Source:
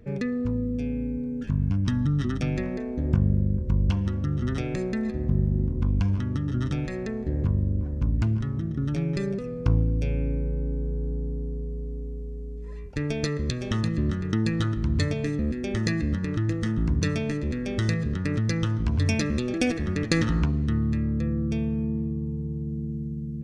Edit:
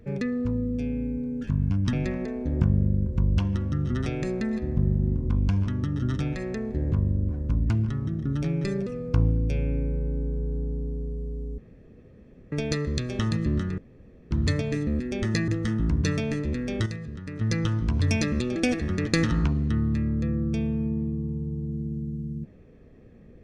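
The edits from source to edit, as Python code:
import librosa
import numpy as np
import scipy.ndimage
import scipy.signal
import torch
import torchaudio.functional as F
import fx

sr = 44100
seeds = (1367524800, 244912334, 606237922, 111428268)

y = fx.edit(x, sr, fx.cut(start_s=1.93, length_s=0.52),
    fx.room_tone_fill(start_s=12.1, length_s=0.94),
    fx.room_tone_fill(start_s=14.3, length_s=0.53),
    fx.cut(start_s=16.0, length_s=0.46),
    fx.clip_gain(start_s=17.84, length_s=0.55, db=-9.5), tone=tone)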